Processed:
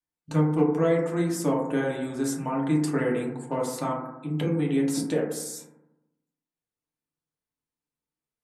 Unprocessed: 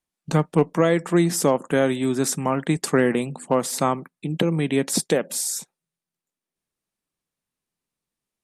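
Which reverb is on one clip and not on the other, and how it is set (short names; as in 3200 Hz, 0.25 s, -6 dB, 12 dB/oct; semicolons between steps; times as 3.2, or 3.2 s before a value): FDN reverb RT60 0.92 s, low-frequency decay 1.2×, high-frequency decay 0.25×, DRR -3.5 dB; gain -12 dB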